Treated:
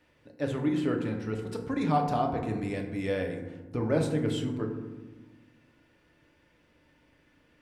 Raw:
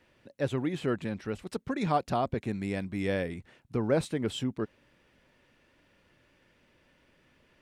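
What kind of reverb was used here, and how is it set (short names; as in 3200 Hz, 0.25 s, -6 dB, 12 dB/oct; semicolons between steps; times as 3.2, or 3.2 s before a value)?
FDN reverb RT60 1.2 s, low-frequency decay 1.55×, high-frequency decay 0.4×, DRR 1.5 dB; gain -2.5 dB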